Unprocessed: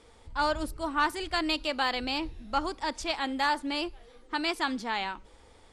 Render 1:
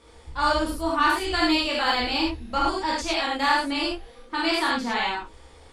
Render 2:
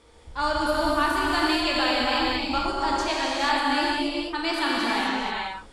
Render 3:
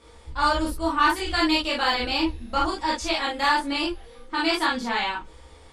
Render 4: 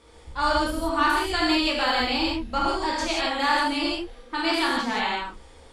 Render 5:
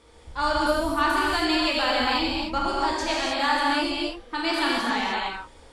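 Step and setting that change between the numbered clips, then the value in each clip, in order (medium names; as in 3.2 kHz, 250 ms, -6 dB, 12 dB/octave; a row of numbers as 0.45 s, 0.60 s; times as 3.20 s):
gated-style reverb, gate: 130 ms, 510 ms, 80 ms, 200 ms, 330 ms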